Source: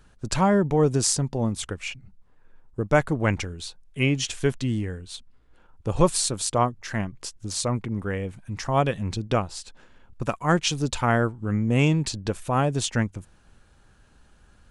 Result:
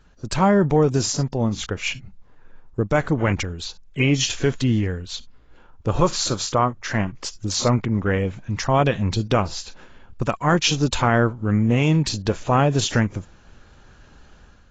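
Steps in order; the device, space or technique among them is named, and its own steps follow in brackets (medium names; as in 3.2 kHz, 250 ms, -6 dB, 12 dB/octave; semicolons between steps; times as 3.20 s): 5.88–6.88 s: peaking EQ 1.3 kHz +5.5 dB 0.76 oct; low-bitrate web radio (level rider gain up to 8 dB; peak limiter -8 dBFS, peak gain reduction 6.5 dB; AAC 24 kbps 16 kHz)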